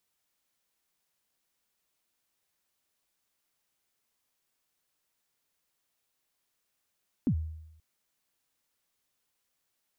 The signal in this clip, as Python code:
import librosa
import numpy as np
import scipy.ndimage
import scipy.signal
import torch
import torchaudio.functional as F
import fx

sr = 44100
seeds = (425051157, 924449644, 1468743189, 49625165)

y = fx.drum_kick(sr, seeds[0], length_s=0.53, level_db=-21, start_hz=300.0, end_hz=79.0, sweep_ms=77.0, decay_s=0.86, click=False)